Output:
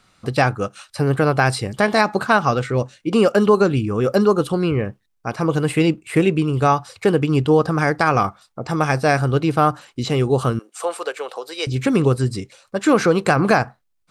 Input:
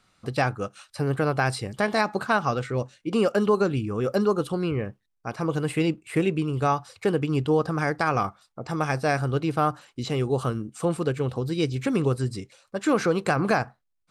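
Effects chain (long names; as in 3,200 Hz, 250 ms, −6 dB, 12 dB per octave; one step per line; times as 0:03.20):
0:10.59–0:11.67: high-pass filter 530 Hz 24 dB per octave
level +7 dB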